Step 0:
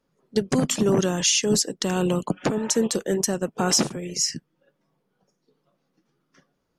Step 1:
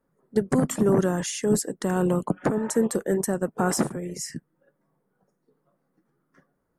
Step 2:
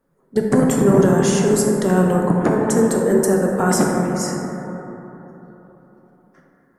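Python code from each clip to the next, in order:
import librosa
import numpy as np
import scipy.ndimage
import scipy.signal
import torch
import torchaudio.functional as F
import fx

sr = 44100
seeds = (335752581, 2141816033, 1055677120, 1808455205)

y1 = fx.band_shelf(x, sr, hz=4000.0, db=-14.0, octaves=1.7)
y2 = fx.rev_plate(y1, sr, seeds[0], rt60_s=3.7, hf_ratio=0.25, predelay_ms=0, drr_db=-1.0)
y2 = y2 * librosa.db_to_amplitude(4.5)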